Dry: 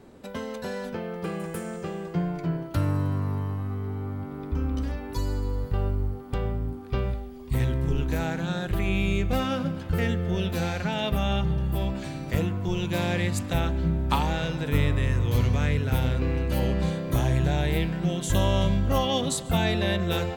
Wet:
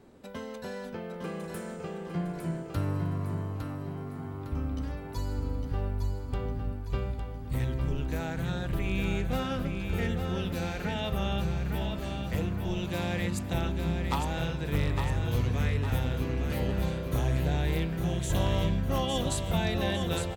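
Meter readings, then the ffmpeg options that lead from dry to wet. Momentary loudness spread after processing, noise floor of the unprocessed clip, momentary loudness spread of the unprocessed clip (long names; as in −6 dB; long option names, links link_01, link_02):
9 LU, −38 dBFS, 9 LU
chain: -af "aeval=exprs='0.211*(abs(mod(val(0)/0.211+3,4)-2)-1)':channel_layout=same,aecho=1:1:857|1714|2571|3428|4285:0.501|0.226|0.101|0.0457|0.0206,volume=-5.5dB"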